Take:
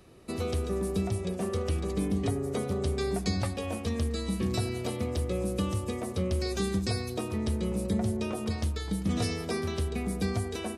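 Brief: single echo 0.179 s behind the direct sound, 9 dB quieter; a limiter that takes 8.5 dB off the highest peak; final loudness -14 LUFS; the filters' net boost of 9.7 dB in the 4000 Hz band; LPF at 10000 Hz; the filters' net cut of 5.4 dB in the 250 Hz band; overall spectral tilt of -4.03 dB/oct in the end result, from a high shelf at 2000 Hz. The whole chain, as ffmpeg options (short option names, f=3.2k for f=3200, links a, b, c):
-af "lowpass=10k,equalizer=f=250:t=o:g=-8,highshelf=f=2k:g=7.5,equalizer=f=4k:t=o:g=4.5,alimiter=limit=-23dB:level=0:latency=1,aecho=1:1:179:0.355,volume=18.5dB"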